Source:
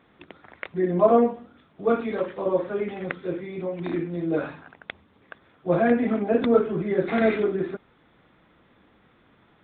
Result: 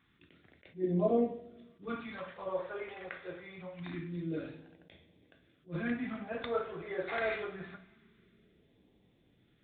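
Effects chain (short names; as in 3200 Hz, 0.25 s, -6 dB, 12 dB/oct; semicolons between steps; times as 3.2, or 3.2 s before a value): two-slope reverb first 0.55 s, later 2.9 s, from -20 dB, DRR 6.5 dB; phaser stages 2, 0.25 Hz, lowest notch 210–1300 Hz; attack slew limiter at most 280 dB/s; gain -7.5 dB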